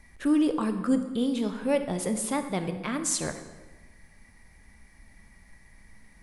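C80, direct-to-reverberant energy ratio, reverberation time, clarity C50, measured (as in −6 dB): 11.5 dB, 8.0 dB, 1.2 s, 9.5 dB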